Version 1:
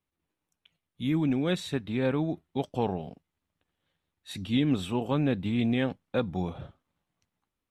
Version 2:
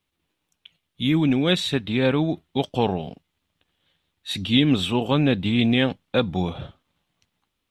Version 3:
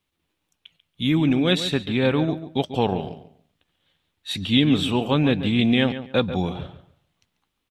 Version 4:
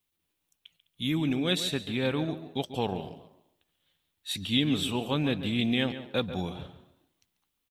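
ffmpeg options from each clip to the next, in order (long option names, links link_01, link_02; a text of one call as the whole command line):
ffmpeg -i in.wav -af "equalizer=frequency=3300:width=1.3:gain=8,volume=6.5dB" out.wav
ffmpeg -i in.wav -filter_complex "[0:a]asplit=2[link_01][link_02];[link_02]adelay=141,lowpass=frequency=3000:poles=1,volume=-11.5dB,asplit=2[link_03][link_04];[link_04]adelay=141,lowpass=frequency=3000:poles=1,volume=0.23,asplit=2[link_05][link_06];[link_06]adelay=141,lowpass=frequency=3000:poles=1,volume=0.23[link_07];[link_01][link_03][link_05][link_07]amix=inputs=4:normalize=0" out.wav
ffmpeg -i in.wav -filter_complex "[0:a]aemphasis=mode=production:type=50kf,asplit=3[link_01][link_02][link_03];[link_02]adelay=206,afreqshift=94,volume=-22dB[link_04];[link_03]adelay=412,afreqshift=188,volume=-32.2dB[link_05];[link_01][link_04][link_05]amix=inputs=3:normalize=0,volume=-8.5dB" out.wav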